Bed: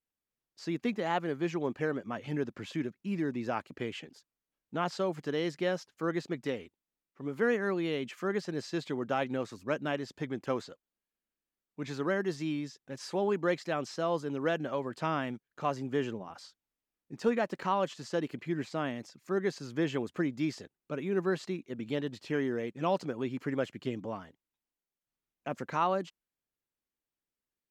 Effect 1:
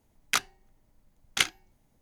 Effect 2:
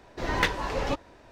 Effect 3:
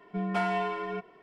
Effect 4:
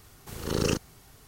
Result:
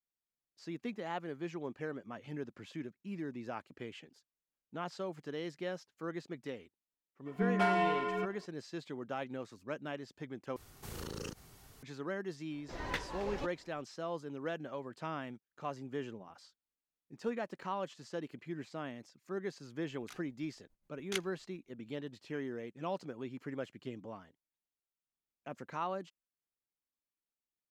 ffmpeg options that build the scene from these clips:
-filter_complex "[0:a]volume=-8.5dB[a];[3:a]asoftclip=type=hard:threshold=-20dB[b];[4:a]acompressor=threshold=-34dB:ratio=6:attack=3.2:release=140:knee=1:detection=peak[c];[1:a]aeval=exprs='val(0)*pow(10,-19*(0.5-0.5*cos(2*PI*7.2*n/s))/20)':c=same[d];[a]asplit=2[e][f];[e]atrim=end=10.564[g];[c]atrim=end=1.27,asetpts=PTS-STARTPTS,volume=-4.5dB[h];[f]atrim=start=11.826[i];[b]atrim=end=1.22,asetpts=PTS-STARTPTS,volume=-1dB,afade=t=in:d=0.02,afade=t=out:st=1.2:d=0.02,adelay=7250[j];[2:a]atrim=end=1.31,asetpts=PTS-STARTPTS,volume=-13dB,afade=t=in:d=0.004:c=hsin,afade=t=out:st=1.306:d=0.004:c=hsin,adelay=12510[k];[d]atrim=end=2.01,asetpts=PTS-STARTPTS,volume=-10.5dB,afade=t=in:d=0.004:c=hsin,afade=t=out:st=2.006:d=0.004:c=hsin,adelay=19750[l];[g][h]acrossfade=d=0.004:c1=hsin:c2=hsin[m];[m][i]acrossfade=d=0.004:c1=hsin:c2=hsin[n];[n][j][k][l]amix=inputs=4:normalize=0"

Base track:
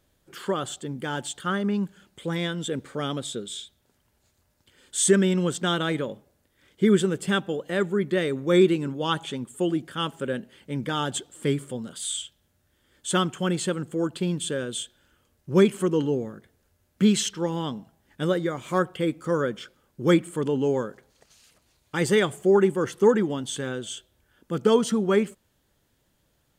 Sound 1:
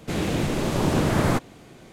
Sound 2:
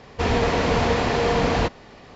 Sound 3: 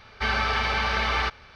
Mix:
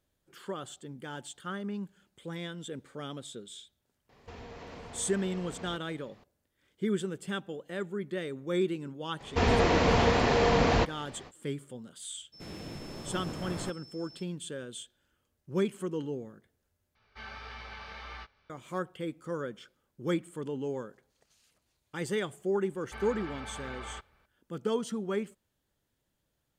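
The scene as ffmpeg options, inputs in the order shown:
-filter_complex "[2:a]asplit=2[a][b];[3:a]asplit=2[c][d];[0:a]volume=-11dB[e];[a]acompressor=threshold=-27dB:ratio=6:attack=3.2:release=140:knee=1:detection=peak[f];[1:a]aeval=exprs='val(0)+0.0224*sin(2*PI*5300*n/s)':c=same[g];[c]flanger=delay=17:depth=5:speed=1.6[h];[d]lowpass=f=1.5k:p=1[i];[e]asplit=2[j][k];[j]atrim=end=16.954[l];[h]atrim=end=1.55,asetpts=PTS-STARTPTS,volume=-17dB[m];[k]atrim=start=18.496[n];[f]atrim=end=2.15,asetpts=PTS-STARTPTS,volume=-15.5dB,afade=t=in:d=0.004:c=hsin,afade=t=out:st=2.146:d=0.004:c=hsin,adelay=180369S[o];[b]atrim=end=2.15,asetpts=PTS-STARTPTS,volume=-3.5dB,afade=t=in:d=0.05,afade=t=out:st=2.1:d=0.05,adelay=9170[p];[g]atrim=end=1.92,asetpts=PTS-STARTPTS,volume=-18dB,afade=t=in:d=0.02,afade=t=out:st=1.9:d=0.02,adelay=12320[q];[i]atrim=end=1.55,asetpts=PTS-STARTPTS,volume=-15.5dB,afade=t=in:d=0.004:c=hsin,afade=t=out:st=1.546:d=0.004:c=hsin,adelay=22710[r];[l][m]acrossfade=d=0.004:c1=hsin:c2=hsin[s];[s][n]acrossfade=d=0.004:c1=hsin:c2=hsin[t];[t][o][p][q][r]amix=inputs=5:normalize=0"

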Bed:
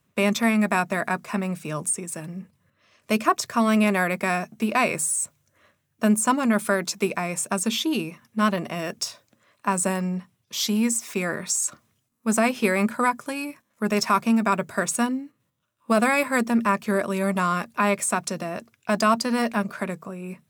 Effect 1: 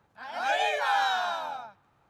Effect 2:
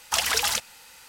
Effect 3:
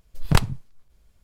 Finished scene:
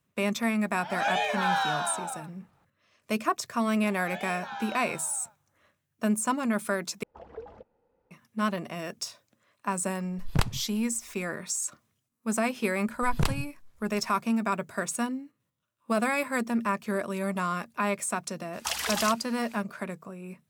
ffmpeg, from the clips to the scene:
-filter_complex "[1:a]asplit=2[a][b];[2:a]asplit=2[c][d];[3:a]asplit=2[e][f];[0:a]volume=-6.5dB[g];[b]aresample=16000,aresample=44100[h];[c]lowpass=f=460:t=q:w=2.3[i];[f]asoftclip=type=tanh:threshold=-15dB[j];[g]asplit=2[k][l];[k]atrim=end=7.034[m];[i]atrim=end=1.08,asetpts=PTS-STARTPTS,volume=-11dB[n];[l]atrim=start=8.106[o];[a]atrim=end=2.09,asetpts=PTS-STARTPTS,volume=-1dB,afade=t=in:d=0.004:c=hsin,afade=t=out:st=2.086:d=0.004:c=hsin,adelay=560[p];[h]atrim=end=2.09,asetpts=PTS-STARTPTS,volume=-13dB,afade=t=in:d=0.004:c=hsin,afade=t=out:st=2.086:d=0.004:c=hsin,adelay=3620[q];[e]atrim=end=1.23,asetpts=PTS-STARTPTS,volume=-7dB,afade=t=in:d=0.004:c=hsin,afade=t=out:st=1.226:d=0.004:c=hsin,adelay=10040[r];[j]atrim=end=1.23,asetpts=PTS-STARTPTS,volume=-2.5dB,afade=t=in:d=0.004:c=hsin,afade=t=out:st=1.226:d=0.004:c=hsin,adelay=12880[s];[d]atrim=end=1.08,asetpts=PTS-STARTPTS,volume=-7dB,afade=t=in:d=0.004:c=hsin,afade=t=out:st=1.076:d=0.004:c=hsin,adelay=18530[t];[m][n]acrossfade=d=0.004:c1=hsin:c2=hsin[u];[u][o]acrossfade=d=0.004:c1=hsin:c2=hsin[v];[v][p][q][r][s][t]amix=inputs=6:normalize=0"

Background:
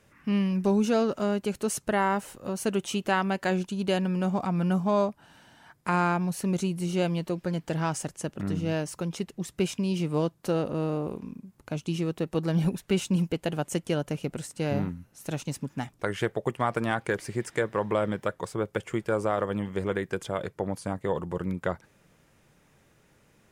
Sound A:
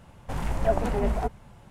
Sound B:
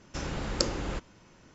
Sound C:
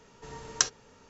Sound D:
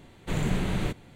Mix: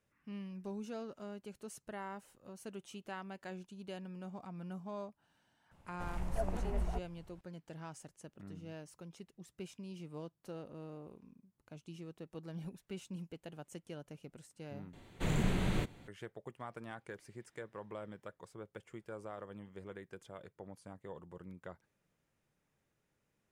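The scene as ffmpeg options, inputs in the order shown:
-filter_complex "[0:a]volume=-19.5dB[a];[1:a]asubboost=boost=4.5:cutoff=100[b];[a]asplit=2[c][d];[c]atrim=end=14.934[e];[4:a]atrim=end=1.15,asetpts=PTS-STARTPTS,volume=-5dB[f];[d]atrim=start=16.076[g];[b]atrim=end=1.7,asetpts=PTS-STARTPTS,volume=-14dB,afade=t=in:d=0.004:c=hsin,afade=t=out:st=1.696:d=0.004:c=hsin,adelay=5710[h];[e][f]acrossfade=d=0.004:c1=hsin:c2=hsin[i];[i][g]acrossfade=d=0.004:c1=hsin:c2=hsin[j];[j][h]amix=inputs=2:normalize=0"

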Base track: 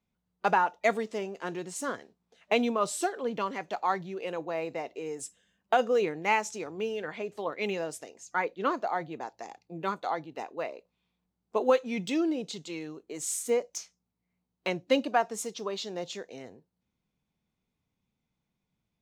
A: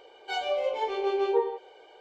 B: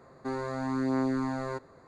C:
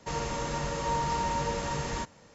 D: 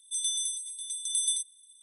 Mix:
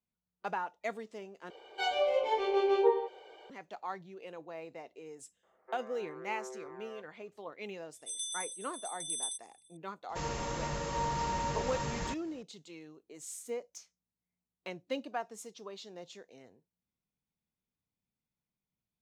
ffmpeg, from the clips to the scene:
-filter_complex "[0:a]volume=-11.5dB[a];[2:a]highpass=f=240:t=q:w=0.5412,highpass=f=240:t=q:w=1.307,lowpass=f=2.4k:t=q:w=0.5176,lowpass=f=2.4k:t=q:w=0.7071,lowpass=f=2.4k:t=q:w=1.932,afreqshift=120[b];[a]asplit=2[c][d];[c]atrim=end=1.504[e];[1:a]atrim=end=2,asetpts=PTS-STARTPTS,volume=-1dB[f];[d]atrim=start=3.496[g];[b]atrim=end=1.87,asetpts=PTS-STARTPTS,volume=-15.5dB,afade=t=in:d=0.004:c=hsin,afade=t=out:st=1.866:d=0.004:c=hsin,adelay=5430[h];[4:a]atrim=end=1.82,asetpts=PTS-STARTPTS,volume=-8.5dB,afade=t=in:d=0.004:c=hsin,afade=t=out:st=1.816:d=0.004:c=hsin,adelay=7950[i];[3:a]atrim=end=2.34,asetpts=PTS-STARTPTS,volume=-4dB,afade=t=in:d=0.004:c=hsin,afade=t=out:st=2.336:d=0.004:c=hsin,adelay=10090[j];[e][f]acrossfade=d=0.004:c1=hsin:c2=hsin[k];[k][g]acrossfade=d=0.004:c1=hsin:c2=hsin[l];[l][h][i][j]amix=inputs=4:normalize=0"

